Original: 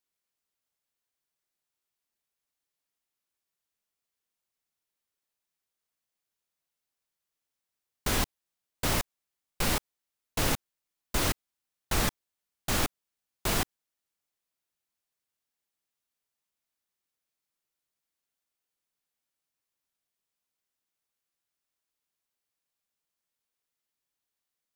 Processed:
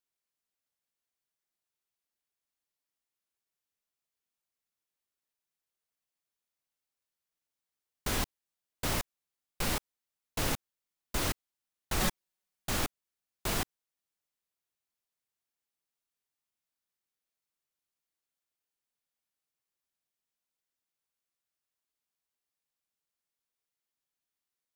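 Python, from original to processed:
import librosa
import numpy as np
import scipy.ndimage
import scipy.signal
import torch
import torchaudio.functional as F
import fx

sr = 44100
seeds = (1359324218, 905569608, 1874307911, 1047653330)

y = fx.comb(x, sr, ms=5.4, depth=0.9, at=(12.0, 12.69))
y = y * 10.0 ** (-4.0 / 20.0)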